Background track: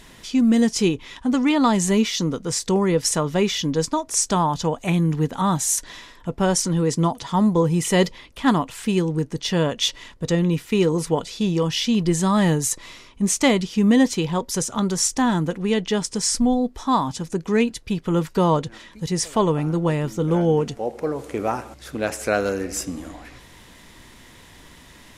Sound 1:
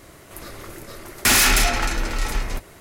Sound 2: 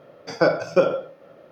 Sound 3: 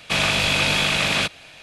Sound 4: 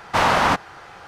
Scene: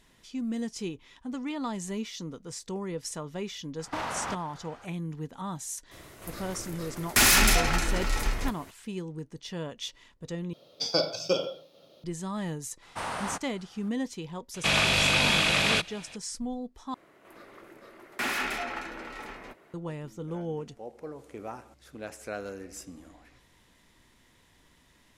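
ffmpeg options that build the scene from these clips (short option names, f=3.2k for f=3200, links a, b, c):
-filter_complex "[4:a]asplit=2[a][b];[1:a]asplit=2[c][d];[0:a]volume=-15.5dB[e];[a]alimiter=limit=-14.5dB:level=0:latency=1:release=89[f];[2:a]highshelf=f=2.6k:t=q:w=3:g=13[g];[b]equalizer=f=9.1k:t=o:w=0.42:g=15[h];[d]acrossover=split=180 3100:gain=0.0891 1 0.178[i][j][k];[i][j][k]amix=inputs=3:normalize=0[l];[e]asplit=3[m][n][o];[m]atrim=end=10.534[p];[g]atrim=end=1.51,asetpts=PTS-STARTPTS,volume=-9dB[q];[n]atrim=start=12.036:end=16.944[r];[l]atrim=end=2.8,asetpts=PTS-STARTPTS,volume=-10dB[s];[o]atrim=start=19.736[t];[f]atrim=end=1.07,asetpts=PTS-STARTPTS,volume=-10.5dB,afade=t=in:d=0.004:c=hsin,afade=t=out:st=1.066:d=0.004:c=hsin,adelay=3790[u];[c]atrim=end=2.8,asetpts=PTS-STARTPTS,volume=-4dB,afade=t=in:d=0.004:c=hsin,afade=t=out:st=2.796:d=0.004:c=hsin,adelay=5910[v];[h]atrim=end=1.07,asetpts=PTS-STARTPTS,volume=-17dB,afade=t=in:d=0.004:c=hsin,afade=t=out:st=1.066:d=0.004:c=hsin,adelay=12820[w];[3:a]atrim=end=1.62,asetpts=PTS-STARTPTS,volume=-3.5dB,afade=t=in:d=0.004:c=hsin,afade=t=out:st=1.616:d=0.004:c=hsin,adelay=14540[x];[p][q]acrossfade=d=0.004:c1=hsin:c2=hsin[y];[y][r]acrossfade=d=0.004:c1=hsin:c2=hsin[z];[z][s]acrossfade=d=0.004:c1=hsin:c2=hsin[aa];[aa][t]acrossfade=d=0.004:c1=hsin:c2=hsin[ab];[ab][u][v][w][x]amix=inputs=5:normalize=0"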